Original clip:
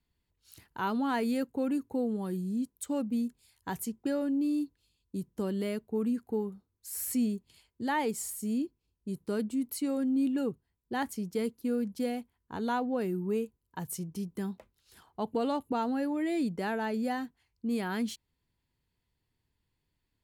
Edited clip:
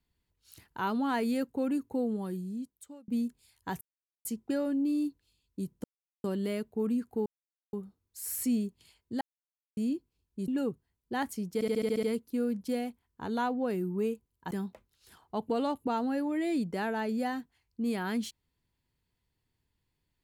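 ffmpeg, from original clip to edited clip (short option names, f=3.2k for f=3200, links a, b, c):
-filter_complex "[0:a]asplit=16[a][b][c][d][e][f][g][h][i][j][k][l][m][n][o][p];[a]atrim=end=3.08,asetpts=PTS-STARTPTS,afade=t=out:st=2.13:d=0.95[q];[b]atrim=start=3.08:end=3.81,asetpts=PTS-STARTPTS,afade=t=in:d=0.004:c=hsin,afade=t=out:st=0.726:d=0.004:c=hsin,apad=pad_dur=0.44[r];[c]atrim=start=3.81:end=5.4,asetpts=PTS-STARTPTS,afade=t=in:d=0.004:c=hsin,afade=t=out:st=1.586:d=0.004:c=hsin,apad=pad_dur=0.4[s];[d]atrim=start=5.4:end=6.42,asetpts=PTS-STARTPTS,afade=t=in:d=0.004:c=hsin,afade=t=out:st=1.016:d=0.004:c=hsin,apad=pad_dur=0.47[t];[e]atrim=start=6.42:end=7.9,asetpts=PTS-STARTPTS,afade=t=in:d=0.004:c=hsin,afade=t=out:st=1.476:d=0.004:c=hsin[u];[f]atrim=start=7.9:end=8.46,asetpts=PTS-STARTPTS,volume=0[v];[g]atrim=start=8.46:end=9.172,asetpts=PTS-STARTPTS,afade=t=in:d=0.004:c=hsin[w];[h]atrim=start=10.278:end=11.412[x];[i]atrim=start=11.338:end=11.412[y];[j]atrim=start=11.338:end=11.412[z];[k]atrim=start=11.338:end=11.412[aa];[l]atrim=start=11.338:end=11.412[ab];[m]atrim=start=11.338:end=11.412[ac];[n]atrim=start=11.338:end=11.412[ad];[o]atrim=start=11.338:end=13.822[ae];[p]atrim=start=14.358[af];[q][r][s][t][u][v][w]concat=n=7:v=0:a=1[ag];[ag][x]acrossfade=d=0.004:c1=hsin:c2=hsin[ah];[ah][y]acrossfade=d=0.004:c1=hsin:c2=hsin[ai];[ai][z]acrossfade=d=0.004:c1=hsin:c2=hsin[aj];[aj][aa]acrossfade=d=0.004:c1=hsin:c2=hsin[ak];[ak][ab]acrossfade=d=0.004:c1=hsin:c2=hsin[al];[al][ac]acrossfade=d=0.004:c1=hsin:c2=hsin[am];[am][ad]acrossfade=d=0.004:c1=hsin:c2=hsin[an];[an][ae]acrossfade=d=0.004:c1=hsin:c2=hsin[ao];[ao][af]acrossfade=d=0.004:c1=hsin:c2=hsin"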